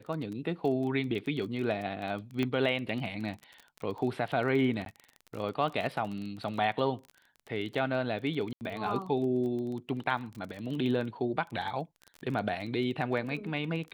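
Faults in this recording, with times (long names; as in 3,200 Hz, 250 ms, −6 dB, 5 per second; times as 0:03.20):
surface crackle 22 per second −36 dBFS
0:02.43: click −19 dBFS
0:04.85–0:04.86: drop-out 12 ms
0:08.53–0:08.61: drop-out 79 ms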